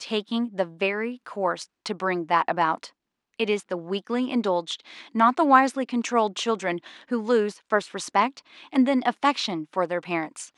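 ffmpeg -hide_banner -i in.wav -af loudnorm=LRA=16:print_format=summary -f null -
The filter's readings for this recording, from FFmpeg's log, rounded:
Input Integrated:    -25.1 LUFS
Input True Peak:      -2.4 dBTP
Input LRA:             3.5 LU
Input Threshold:     -35.3 LUFS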